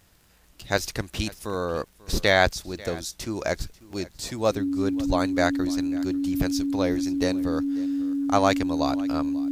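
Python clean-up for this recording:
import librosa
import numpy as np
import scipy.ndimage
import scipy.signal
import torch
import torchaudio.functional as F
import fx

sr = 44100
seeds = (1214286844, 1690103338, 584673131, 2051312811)

y = fx.fix_declick_ar(x, sr, threshold=6.5)
y = fx.notch(y, sr, hz=280.0, q=30.0)
y = fx.fix_echo_inverse(y, sr, delay_ms=542, level_db=-20.5)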